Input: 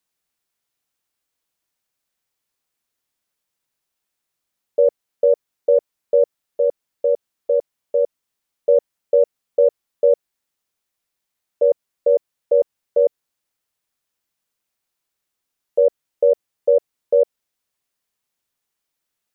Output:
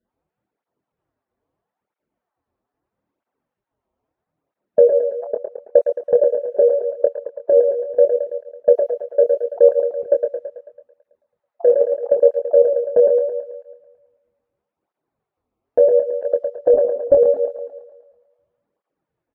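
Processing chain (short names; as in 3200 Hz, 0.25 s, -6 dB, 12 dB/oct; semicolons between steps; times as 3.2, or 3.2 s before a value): random spectral dropouts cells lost 29%; 6.6–7.57 low shelf 240 Hz -10.5 dB; low-pass opened by the level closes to 670 Hz, open at -13.5 dBFS; 11.7–12.56 dynamic EQ 520 Hz, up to +7 dB, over -28 dBFS, Q 1.1; 16.74–17.15 monotone LPC vocoder at 8 kHz 280 Hz; compressor 2:1, threshold -33 dBFS, peak gain reduction 15 dB; doubler 25 ms -6 dB; thinning echo 0.11 s, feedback 61%, high-pass 260 Hz, level -4.5 dB; maximiser +16.5 dB; tape flanging out of phase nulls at 0.77 Hz, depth 7.2 ms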